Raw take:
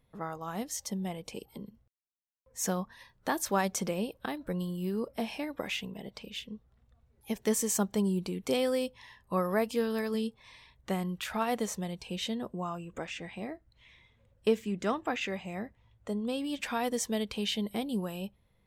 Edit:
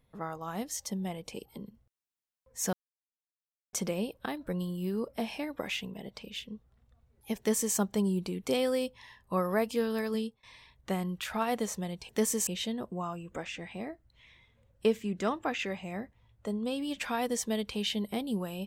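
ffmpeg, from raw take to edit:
-filter_complex "[0:a]asplit=6[a][b][c][d][e][f];[a]atrim=end=2.73,asetpts=PTS-STARTPTS,afade=t=out:st=2.726:d=0.004:c=hsin[g];[b]atrim=start=2.73:end=3.73,asetpts=PTS-STARTPTS,volume=0[h];[c]atrim=start=3.73:end=10.43,asetpts=PTS-STARTPTS,afade=t=in:d=0.004:c=hsin,afade=t=out:st=6.45:d=0.25:silence=0.1[i];[d]atrim=start=10.43:end=12.092,asetpts=PTS-STARTPTS,afade=t=in:d=0.004:c=hsin:silence=0.1[j];[e]atrim=start=7.378:end=7.762[k];[f]atrim=start=12.088[l];[g][h][i][j]concat=n=4:v=0:a=1[m];[m][k]acrossfade=d=0.004:c1=hsin:c2=hsin[n];[n][l]acrossfade=d=0.004:c1=hsin:c2=hsin"

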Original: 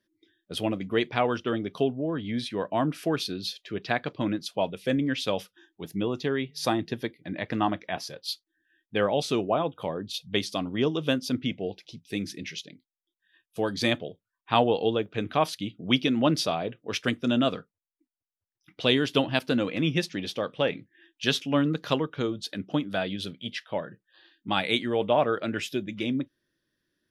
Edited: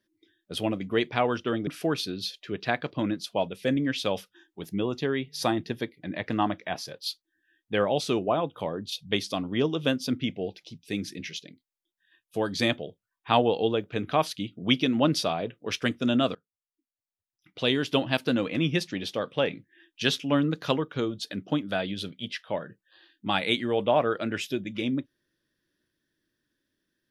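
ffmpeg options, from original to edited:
-filter_complex "[0:a]asplit=3[a][b][c];[a]atrim=end=1.672[d];[b]atrim=start=2.888:end=17.57,asetpts=PTS-STARTPTS,afade=t=out:st=14.678:d=0.004:c=hsin:silence=0.0794328[e];[c]atrim=start=17.57,asetpts=PTS-STARTPTS,afade=t=in:d=1.8:silence=0.0794328[f];[e][f]concat=n=2:v=0:a=1[g];[d][g]acrossfade=d=0.004:c1=hsin:c2=hsin"

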